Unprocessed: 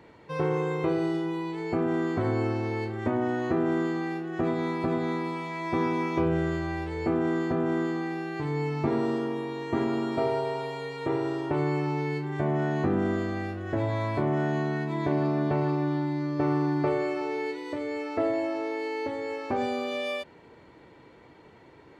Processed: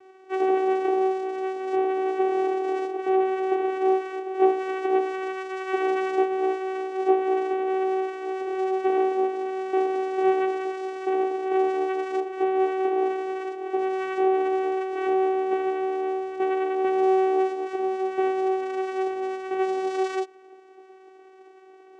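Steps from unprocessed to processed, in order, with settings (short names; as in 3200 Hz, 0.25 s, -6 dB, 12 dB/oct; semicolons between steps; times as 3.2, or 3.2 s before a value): chorus voices 6, 0.47 Hz, delay 15 ms, depth 4.2 ms; vocoder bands 4, saw 379 Hz; gain +7 dB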